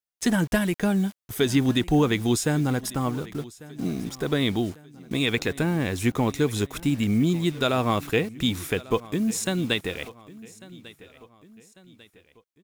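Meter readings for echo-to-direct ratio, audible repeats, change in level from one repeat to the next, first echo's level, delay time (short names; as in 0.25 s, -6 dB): -19.0 dB, 3, -6.5 dB, -20.0 dB, 1.146 s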